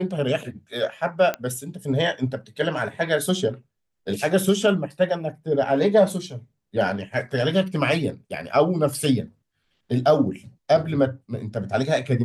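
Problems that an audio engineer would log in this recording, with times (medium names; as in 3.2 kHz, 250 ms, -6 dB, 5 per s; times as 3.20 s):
1.34 s: pop -12 dBFS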